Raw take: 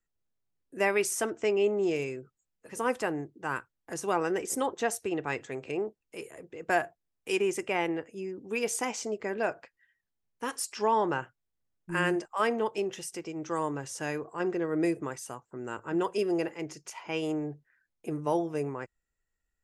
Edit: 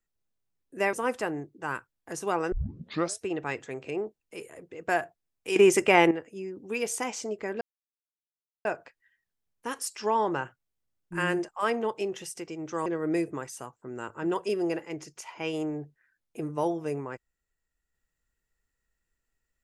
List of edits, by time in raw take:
0:00.93–0:02.74: remove
0:04.33: tape start 0.69 s
0:07.37–0:07.92: clip gain +10 dB
0:09.42: splice in silence 1.04 s
0:13.63–0:14.55: remove

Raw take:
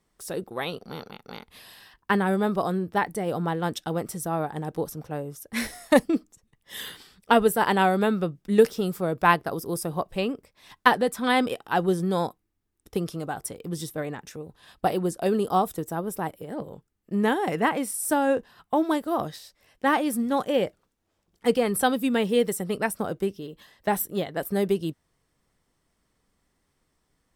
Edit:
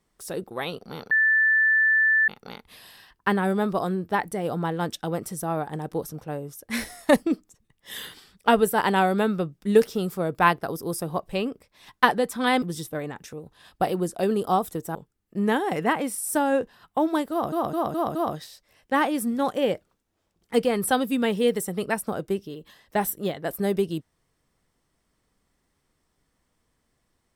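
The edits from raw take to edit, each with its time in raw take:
0:01.11: insert tone 1,760 Hz −16.5 dBFS 1.17 s
0:11.45–0:13.65: remove
0:15.98–0:16.71: remove
0:19.07: stutter 0.21 s, 5 plays

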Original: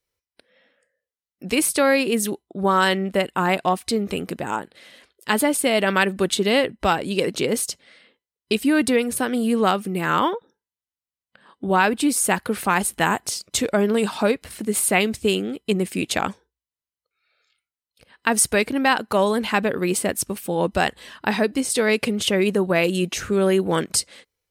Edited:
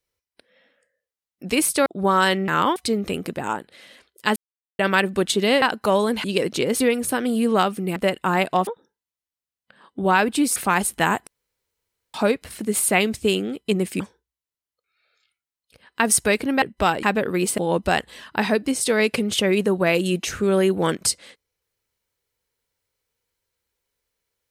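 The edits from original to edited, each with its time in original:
0:01.86–0:02.46: remove
0:03.08–0:03.79: swap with 0:10.04–0:10.32
0:05.39–0:05.82: silence
0:06.65–0:07.06: swap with 0:18.89–0:19.51
0:07.62–0:08.88: remove
0:12.21–0:12.56: remove
0:13.27–0:14.14: fill with room tone
0:16.00–0:16.27: remove
0:20.06–0:20.47: remove

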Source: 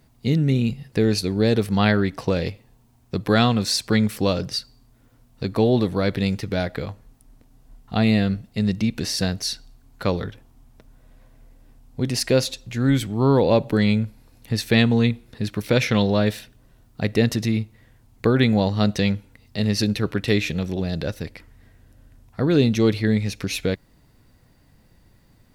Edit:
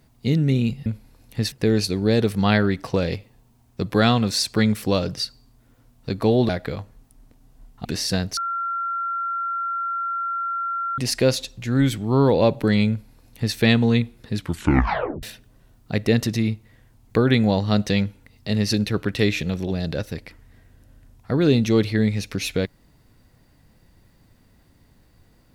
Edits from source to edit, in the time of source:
0:05.83–0:06.59: remove
0:07.95–0:08.94: remove
0:09.46–0:12.07: beep over 1,370 Hz −23 dBFS
0:13.99–0:14.65: duplicate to 0:00.86
0:15.45: tape stop 0.87 s

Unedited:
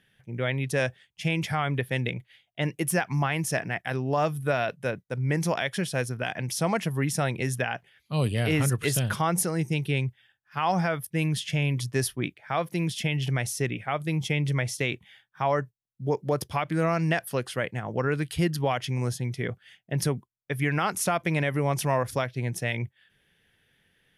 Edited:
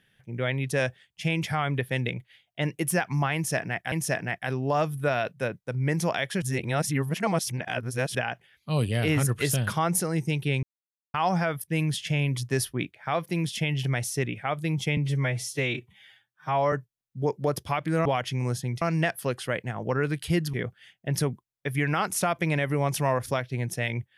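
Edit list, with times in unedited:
0:03.35–0:03.92: repeat, 2 plays
0:05.85–0:07.58: reverse
0:10.06–0:10.57: silence
0:14.40–0:15.57: time-stretch 1.5×
0:18.62–0:19.38: move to 0:16.90

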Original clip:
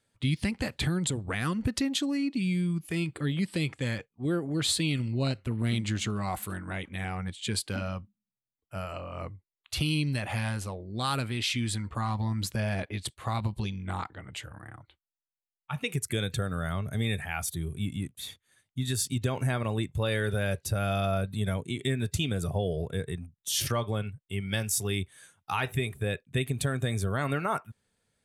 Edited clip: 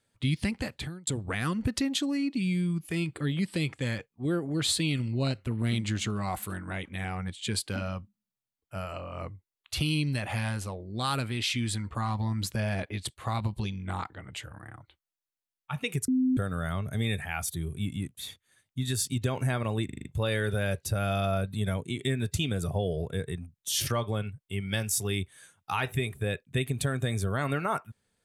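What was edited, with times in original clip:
0:00.53–0:01.07: fade out
0:16.08–0:16.37: beep over 257 Hz −21.5 dBFS
0:19.85: stutter 0.04 s, 6 plays

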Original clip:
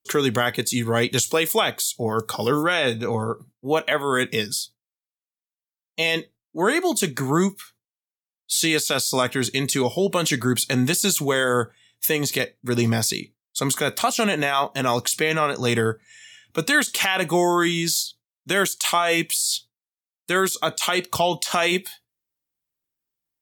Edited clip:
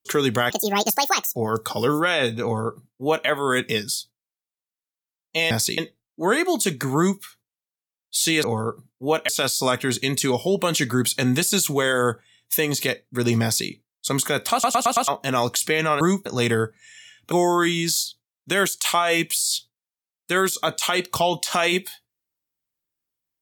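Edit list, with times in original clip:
0:00.50–0:01.99: play speed 174%
0:03.06–0:03.91: duplicate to 0:08.80
0:07.33–0:07.58: duplicate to 0:15.52
0:12.94–0:13.21: duplicate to 0:06.14
0:14.04: stutter in place 0.11 s, 5 plays
0:16.58–0:17.31: remove

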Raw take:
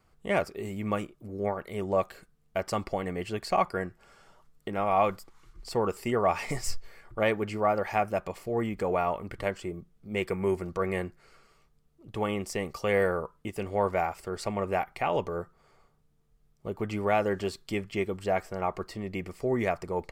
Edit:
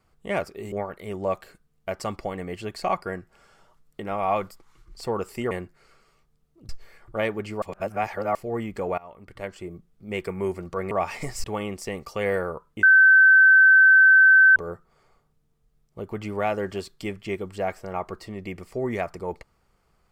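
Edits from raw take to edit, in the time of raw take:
0:00.72–0:01.40: remove
0:06.19–0:06.72: swap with 0:10.94–0:12.12
0:07.65–0:08.38: reverse
0:09.01–0:09.77: fade in, from −23 dB
0:13.51–0:15.24: beep over 1,540 Hz −10.5 dBFS

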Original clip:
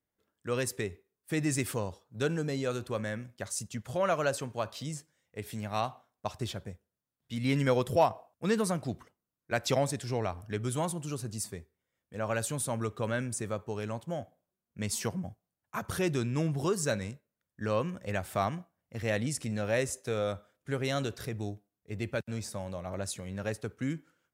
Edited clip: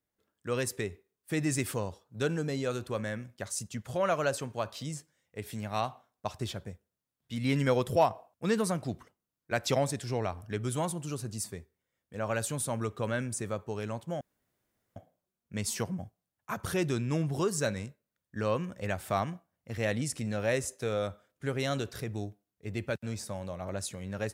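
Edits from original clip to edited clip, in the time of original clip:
0:14.21: splice in room tone 0.75 s

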